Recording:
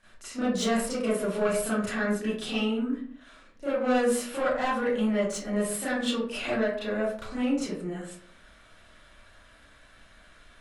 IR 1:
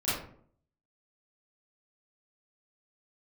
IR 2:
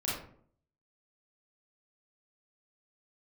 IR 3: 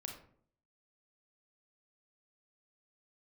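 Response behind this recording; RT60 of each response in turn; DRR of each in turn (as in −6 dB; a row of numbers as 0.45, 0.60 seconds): 1; 0.55, 0.60, 0.60 seconds; −13.0, −7.5, 2.0 decibels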